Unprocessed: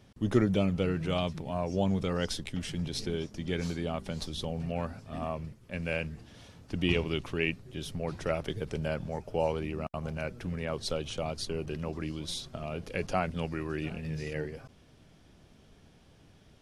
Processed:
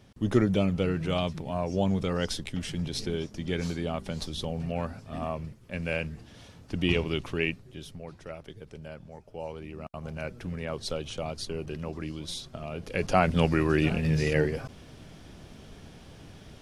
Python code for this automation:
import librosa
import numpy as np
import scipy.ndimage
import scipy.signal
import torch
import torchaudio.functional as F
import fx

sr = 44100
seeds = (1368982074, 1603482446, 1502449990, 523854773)

y = fx.gain(x, sr, db=fx.line((7.41, 2.0), (8.2, -10.0), (9.32, -10.0), (10.25, 0.0), (12.74, 0.0), (13.39, 10.5)))